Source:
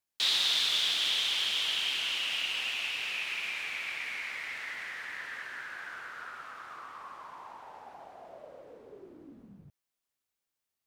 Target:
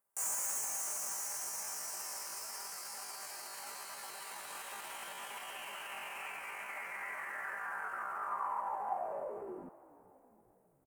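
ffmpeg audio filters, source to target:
-filter_complex "[0:a]asetrate=80880,aresample=44100,atempo=0.545254,bandreject=f=3.5k:w=7.3,aecho=1:1:5.1:0.45,asoftclip=type=hard:threshold=-27dB,lowshelf=f=490:g=-8,asplit=6[a][b][c][d][e][f];[b]adelay=412,afreqshift=-74,volume=-20dB[g];[c]adelay=824,afreqshift=-148,volume=-24.7dB[h];[d]adelay=1236,afreqshift=-222,volume=-29.5dB[i];[e]adelay=1648,afreqshift=-296,volume=-34.2dB[j];[f]adelay=2060,afreqshift=-370,volume=-38.9dB[k];[a][g][h][i][j][k]amix=inputs=6:normalize=0,alimiter=level_in=9.5dB:limit=-24dB:level=0:latency=1:release=22,volume=-9.5dB,firequalizer=gain_entry='entry(210,0);entry(850,7);entry(1300,0);entry(3800,-26);entry(8700,-2)':delay=0.05:min_phase=1,volume=9.5dB"

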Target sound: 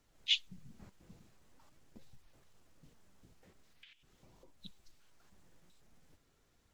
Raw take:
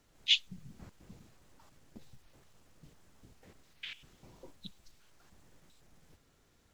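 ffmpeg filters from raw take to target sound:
-filter_complex "[0:a]asettb=1/sr,asplit=3[a][b][c];[a]atrim=end=3.404[d];[b]atrim=start=3.4:end=4.6,asetpts=PTS-STARTPTS,afade=t=in:d=0.004:c=qsin,afade=t=out:st=1.196:d=0.004:c=qsin,acompressor=threshold=-54dB:ratio=6[e];[c]atrim=start=4.596[f];[d][e]acrossfade=d=0.004:c1=hsin:c2=qsin[g];[g][f]acrossfade=d=0.004:c1=qsin:c2=hsin,flanger=delay=0.8:depth=5.4:regen=79:speed=0.45:shape=triangular"

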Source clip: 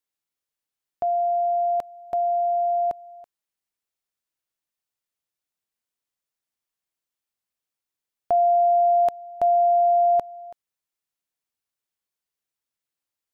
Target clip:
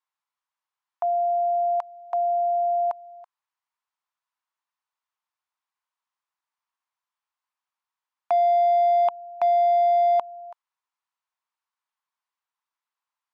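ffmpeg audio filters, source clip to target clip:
-af "highpass=f=990:t=q:w=3.8,asoftclip=type=hard:threshold=-16.5dB,aemphasis=mode=reproduction:type=50fm"

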